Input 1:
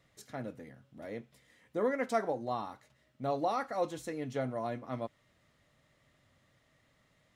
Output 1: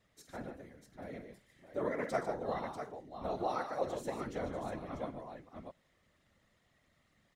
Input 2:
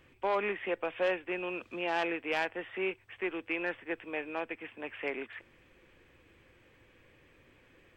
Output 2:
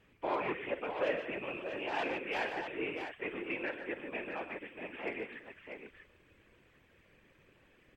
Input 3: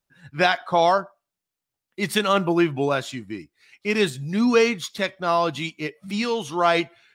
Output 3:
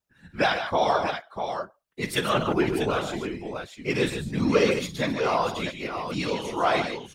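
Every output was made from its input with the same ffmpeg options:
-af "aecho=1:1:49|122|148|643:0.251|0.224|0.355|0.422,afftfilt=real='hypot(re,im)*cos(2*PI*random(0))':imag='hypot(re,im)*sin(2*PI*random(1))':win_size=512:overlap=0.75,volume=1.19"

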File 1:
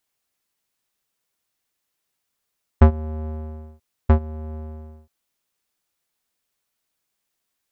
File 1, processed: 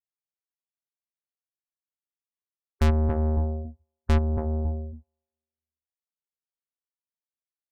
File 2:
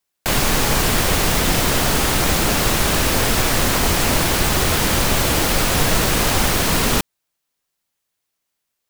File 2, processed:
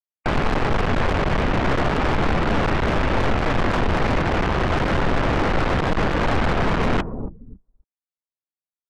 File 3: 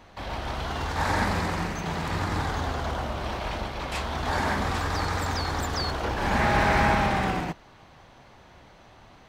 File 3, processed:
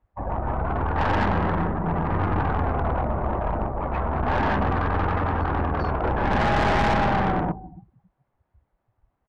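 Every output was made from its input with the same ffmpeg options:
-filter_complex "[0:a]lowpass=1600,asplit=2[s0][s1];[s1]adelay=277,lowpass=f=1100:p=1,volume=0.158,asplit=2[s2][s3];[s3]adelay=277,lowpass=f=1100:p=1,volume=0.35,asplit=2[s4][s5];[s5]adelay=277,lowpass=f=1100:p=1,volume=0.35[s6];[s2][s4][s6]amix=inputs=3:normalize=0[s7];[s0][s7]amix=inputs=2:normalize=0,afftdn=nr=32:nf=-35,aeval=exprs='(tanh(22.4*val(0)+0.4)-tanh(0.4))/22.4':c=same,volume=2.82"

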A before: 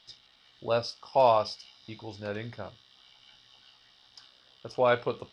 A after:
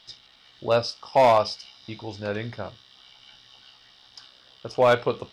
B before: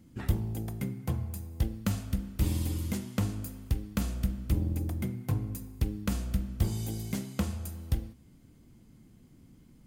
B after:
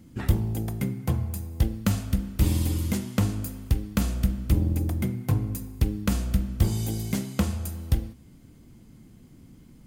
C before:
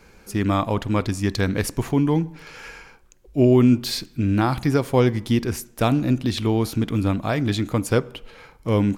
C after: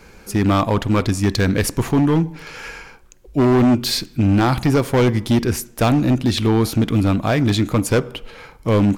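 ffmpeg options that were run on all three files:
-af "volume=7.08,asoftclip=hard,volume=0.141,volume=2"

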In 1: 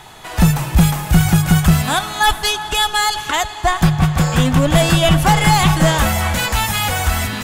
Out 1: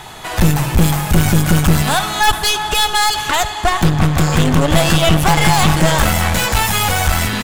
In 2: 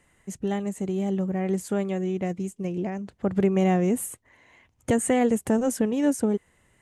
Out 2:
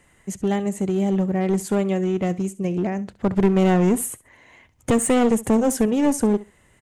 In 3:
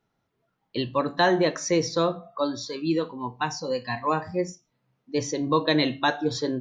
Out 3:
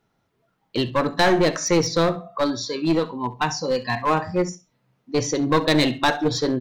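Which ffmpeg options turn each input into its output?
-af "acontrast=72,aeval=exprs='clip(val(0),-1,0.133)':c=same,aecho=1:1:67|134:0.119|0.0202,volume=0.891"

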